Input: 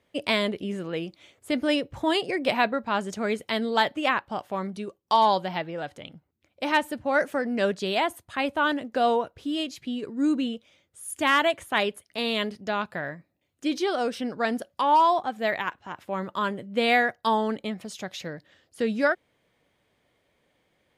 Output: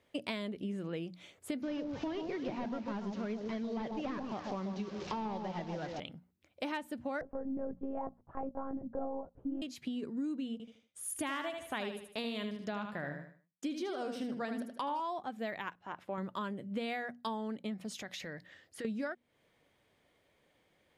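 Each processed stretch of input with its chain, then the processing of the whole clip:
1.62–6 delta modulation 32 kbps, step -38.5 dBFS + echo with dull and thin repeats by turns 0.139 s, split 1000 Hz, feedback 50%, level -5 dB + mismatched tape noise reduction encoder only
7.21–9.62 LPF 1000 Hz 24 dB/oct + monotone LPC vocoder at 8 kHz 270 Hz
10.52–15 expander -55 dBFS + feedback echo 77 ms, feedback 29%, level -7 dB
15.75–16.18 HPF 800 Hz 6 dB/oct + tilt -3.5 dB/oct
17.99–18.85 compressor 4:1, threshold -39 dBFS + bell 1900 Hz +7.5 dB 0.43 oct
whole clip: notches 60/120/180/240 Hz; dynamic EQ 200 Hz, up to +7 dB, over -41 dBFS, Q 0.89; compressor 6:1, threshold -34 dBFS; gain -2 dB

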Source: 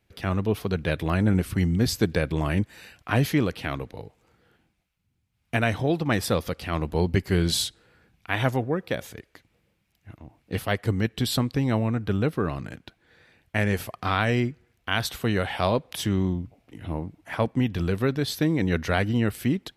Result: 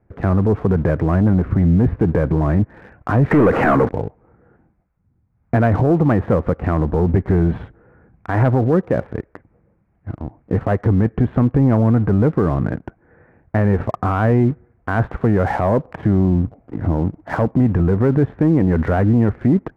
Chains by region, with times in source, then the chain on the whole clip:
3.31–3.89 G.711 law mismatch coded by mu + overdrive pedal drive 26 dB, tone 5300 Hz, clips at -11.5 dBFS
whole clip: Bessel low-pass 1000 Hz, order 8; sample leveller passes 1; maximiser +20.5 dB; gain -7 dB

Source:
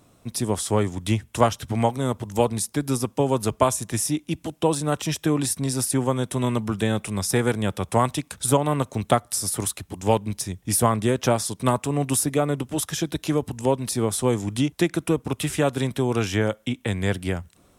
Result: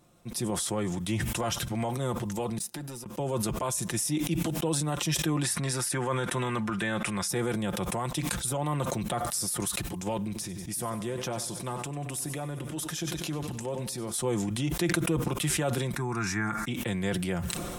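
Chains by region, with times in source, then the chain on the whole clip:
2.58–3.06 notch comb 1100 Hz + sample leveller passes 2 + flipped gate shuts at -25 dBFS, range -32 dB
5.43–7.28 LPF 12000 Hz 24 dB/oct + bell 1600 Hz +11.5 dB 1.6 oct
10.18–14.14 compressor 2:1, threshold -30 dBFS + feedback echo 95 ms, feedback 53%, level -15 dB
15.96–16.68 LPF 9700 Hz + bell 1600 Hz +5.5 dB 2.2 oct + fixed phaser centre 1300 Hz, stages 4
whole clip: limiter -14 dBFS; comb 5.7 ms, depth 54%; sustainer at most 20 dB/s; gain -6.5 dB

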